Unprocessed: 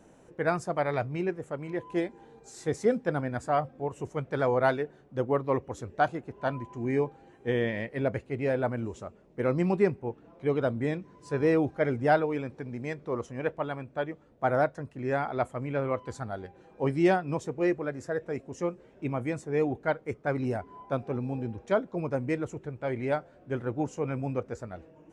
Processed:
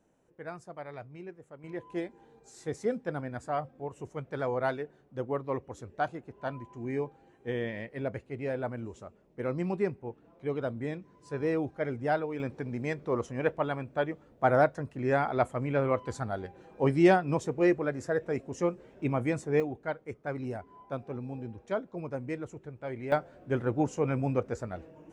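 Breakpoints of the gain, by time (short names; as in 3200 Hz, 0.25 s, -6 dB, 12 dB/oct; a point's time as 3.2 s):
-14 dB
from 1.64 s -5.5 dB
from 12.4 s +2 dB
from 19.6 s -6 dB
from 23.12 s +2.5 dB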